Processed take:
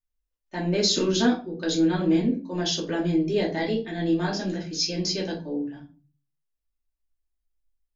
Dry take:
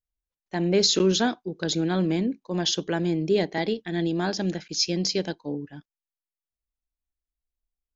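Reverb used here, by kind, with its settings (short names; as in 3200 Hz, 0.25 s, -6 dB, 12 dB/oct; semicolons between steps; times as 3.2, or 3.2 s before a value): shoebox room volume 180 m³, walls furnished, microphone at 2.6 m; gain -6 dB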